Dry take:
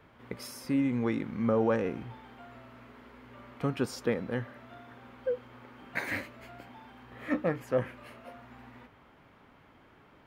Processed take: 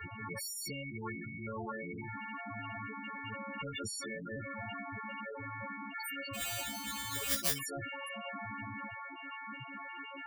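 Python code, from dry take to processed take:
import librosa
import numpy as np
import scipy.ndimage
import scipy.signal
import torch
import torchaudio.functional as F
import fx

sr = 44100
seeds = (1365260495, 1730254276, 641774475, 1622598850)

y = fx.freq_snap(x, sr, grid_st=4)
y = fx.spec_topn(y, sr, count=8)
y = fx.phaser_stages(y, sr, stages=6, low_hz=320.0, high_hz=1700.0, hz=2.1, feedback_pct=25)
y = fx.sample_hold(y, sr, seeds[0], rate_hz=5300.0, jitter_pct=0, at=(6.33, 7.58), fade=0.02)
y = fx.low_shelf_res(y, sr, hz=230.0, db=7.0, q=1.5)
y = fx.spectral_comp(y, sr, ratio=10.0)
y = y * 10.0 ** (4.5 / 20.0)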